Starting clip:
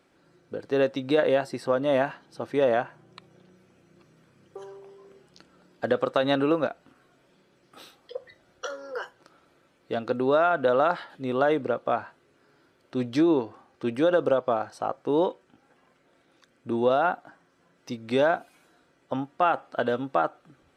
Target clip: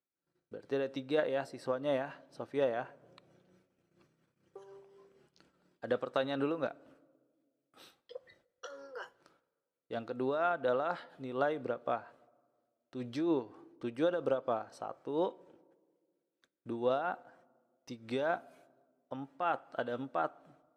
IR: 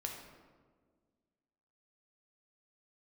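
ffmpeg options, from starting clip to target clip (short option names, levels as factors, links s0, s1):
-filter_complex "[0:a]agate=range=0.0631:threshold=0.00126:ratio=16:detection=peak,tremolo=f=4.2:d=0.5,asplit=2[s0][s1];[1:a]atrim=start_sample=2205[s2];[s1][s2]afir=irnorm=-1:irlink=0,volume=0.112[s3];[s0][s3]amix=inputs=2:normalize=0,volume=0.376"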